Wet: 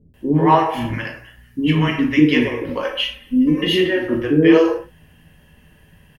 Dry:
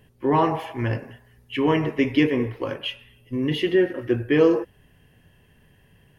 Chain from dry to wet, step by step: 0.76–2.19 band shelf 610 Hz -8.5 dB; 2.69–3.67 comb 3.9 ms, depth 93%; bands offset in time lows, highs 0.14 s, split 410 Hz; non-linear reverb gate 0.13 s falling, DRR 2 dB; gain +5 dB

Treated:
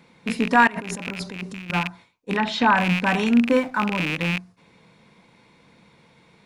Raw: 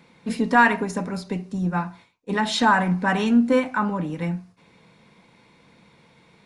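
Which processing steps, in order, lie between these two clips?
rattling part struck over -32 dBFS, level -14 dBFS; 0.67–1.7 negative-ratio compressor -33 dBFS, ratio -1; 2.37–2.77 LPF 3900 Hz 12 dB/oct; 3.45–3.86 backlash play -39 dBFS

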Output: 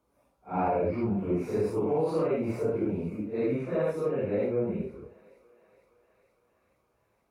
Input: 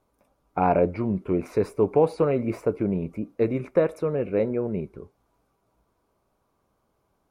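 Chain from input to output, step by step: phase scrambler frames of 0.2 s; on a send: thinning echo 0.463 s, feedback 74%, high-pass 530 Hz, level -23 dB; on the sum: limiter -16.5 dBFS, peak gain reduction 8 dB; HPF 44 Hz; gain -2.5 dB

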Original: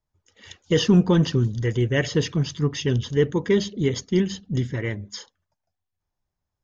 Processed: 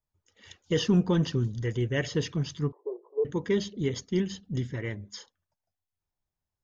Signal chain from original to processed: 2.72–3.25 Chebyshev band-pass 350–1100 Hz, order 5; gain -6.5 dB

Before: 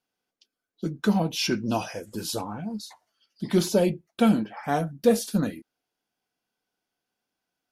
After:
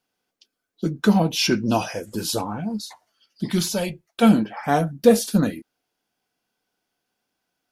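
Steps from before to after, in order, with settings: 3.5–4.22 bell 620 Hz -> 150 Hz -14.5 dB 1.9 oct; gain +5.5 dB

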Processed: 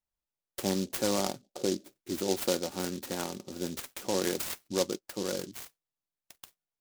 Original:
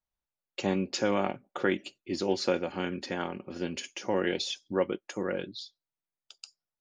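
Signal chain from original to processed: 1.42–1.96 band shelf 2100 Hz -14 dB 2.5 oct; noise-modulated delay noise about 4900 Hz, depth 0.12 ms; gain -1.5 dB

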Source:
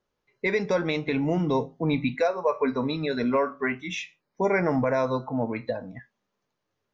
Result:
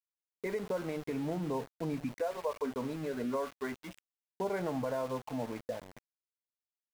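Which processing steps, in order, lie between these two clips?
LPF 1200 Hz 12 dB/oct; low shelf 360 Hz -4 dB; compressor 2:1, threshold -27 dBFS, peak gain reduction 4.5 dB; sample gate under -37.5 dBFS; gain -5.5 dB

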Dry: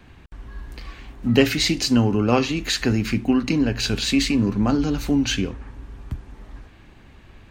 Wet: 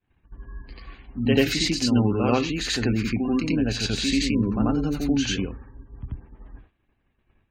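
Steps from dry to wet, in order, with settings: spectral gate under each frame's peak -30 dB strong; reverse echo 88 ms -4 dB; expander -33 dBFS; gain -4 dB

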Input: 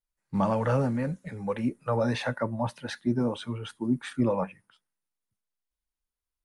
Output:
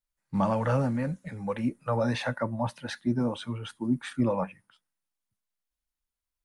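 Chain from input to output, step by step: bell 410 Hz -6 dB 0.34 oct

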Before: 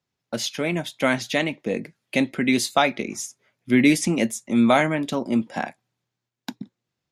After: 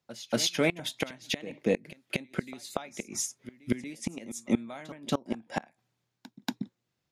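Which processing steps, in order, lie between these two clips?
flipped gate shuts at -13 dBFS, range -25 dB; pre-echo 0.235 s -16.5 dB

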